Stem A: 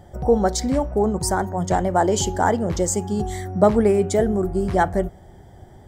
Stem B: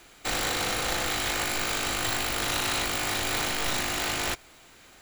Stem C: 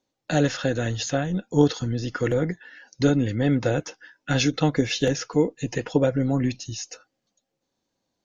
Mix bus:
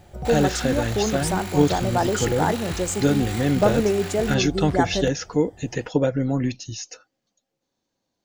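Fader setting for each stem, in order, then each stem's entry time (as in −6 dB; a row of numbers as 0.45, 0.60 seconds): −4.0, −8.0, 0.0 decibels; 0.00, 0.00, 0.00 seconds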